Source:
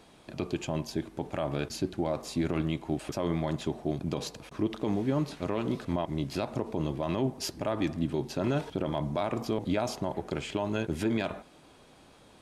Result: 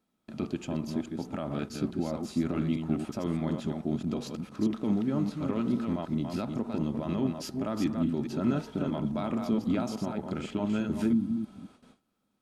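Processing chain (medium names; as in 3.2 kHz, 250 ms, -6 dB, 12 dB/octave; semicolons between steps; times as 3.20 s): chunks repeated in reverse 212 ms, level -5 dB; spectral replace 11.15–11.65 s, 340–9000 Hz after; small resonant body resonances 220/1300 Hz, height 13 dB, ringing for 45 ms; gate with hold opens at -40 dBFS; trim -6 dB; SBC 192 kbps 44.1 kHz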